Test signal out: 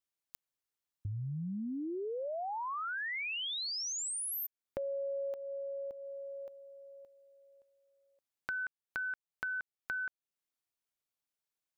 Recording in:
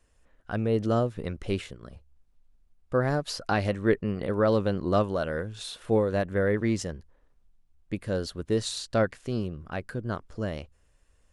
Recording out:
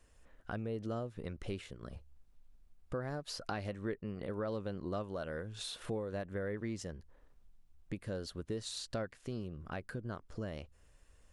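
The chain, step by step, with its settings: compressor 3:1, threshold -42 dBFS; gain +1 dB

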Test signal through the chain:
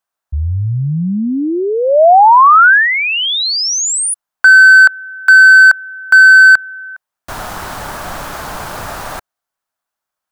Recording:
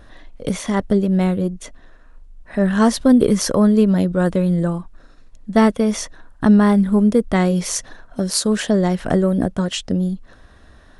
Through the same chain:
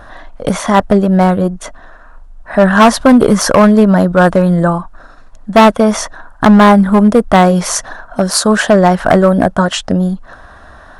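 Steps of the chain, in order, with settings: band shelf 1000 Hz +10.5 dB; hard clip -8 dBFS; gain +6.5 dB

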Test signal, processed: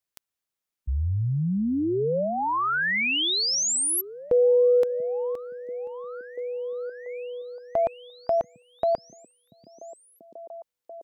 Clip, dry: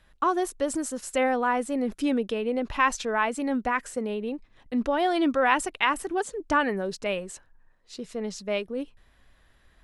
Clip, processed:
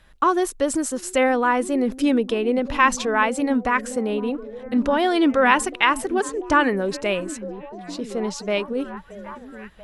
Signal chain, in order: dynamic EQ 710 Hz, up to -4 dB, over -38 dBFS, Q 4.3; delay with a stepping band-pass 0.687 s, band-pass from 170 Hz, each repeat 0.7 oct, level -8.5 dB; gain +6 dB

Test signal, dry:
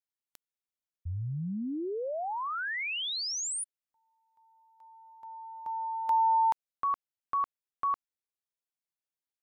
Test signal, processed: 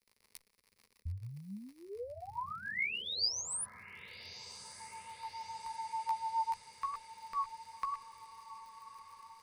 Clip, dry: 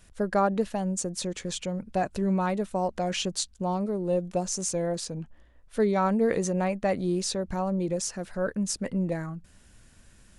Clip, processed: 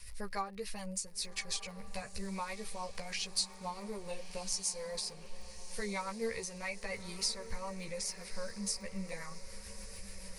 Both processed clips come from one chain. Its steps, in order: passive tone stack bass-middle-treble 10-0-10; chorus voices 4, 0.27 Hz, delay 14 ms, depth 1.8 ms; compressor 2:1, threshold -60 dBFS; crackle 88/s -63 dBFS; rotary speaker horn 7 Hz; ripple EQ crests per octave 0.89, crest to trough 9 dB; diffused feedback echo 1.219 s, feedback 62%, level -14 dB; gain +16 dB

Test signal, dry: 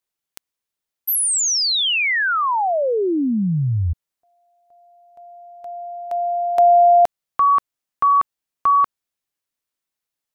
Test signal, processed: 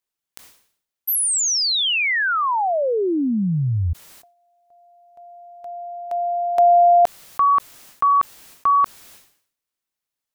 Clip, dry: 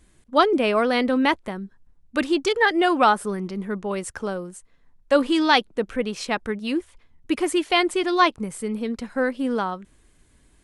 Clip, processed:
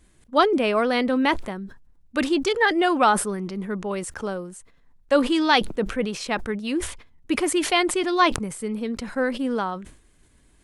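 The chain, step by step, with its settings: sustainer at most 97 dB/s; gain -1 dB

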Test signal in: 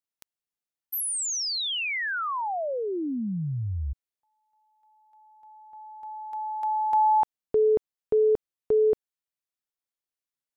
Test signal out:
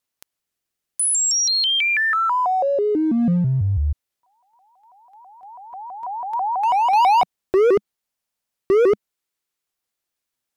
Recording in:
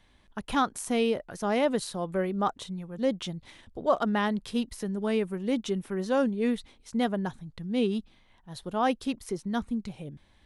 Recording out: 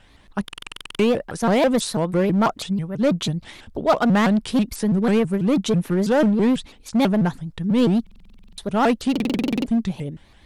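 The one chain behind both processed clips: dynamic EQ 200 Hz, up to +4 dB, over -43 dBFS, Q 2.9; in parallel at -6 dB: wavefolder -26.5 dBFS; on the sum: stuck buffer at 0.44/8.02/9.11, samples 2048, times 11; shaped vibrato saw up 6.1 Hz, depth 250 cents; gain +6.5 dB

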